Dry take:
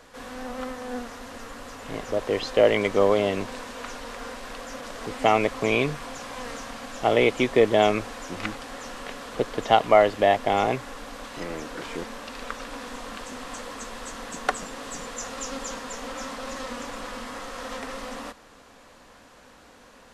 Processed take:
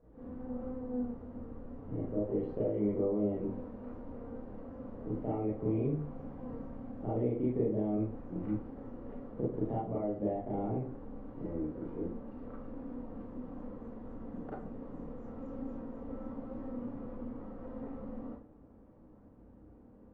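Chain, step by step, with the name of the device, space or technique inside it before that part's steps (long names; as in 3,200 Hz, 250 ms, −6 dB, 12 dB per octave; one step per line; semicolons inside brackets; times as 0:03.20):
television next door (downward compressor 6 to 1, threshold −22 dBFS, peak gain reduction 10.5 dB; low-pass filter 330 Hz 12 dB per octave; convolution reverb RT60 0.40 s, pre-delay 30 ms, DRR −8 dB)
level −7.5 dB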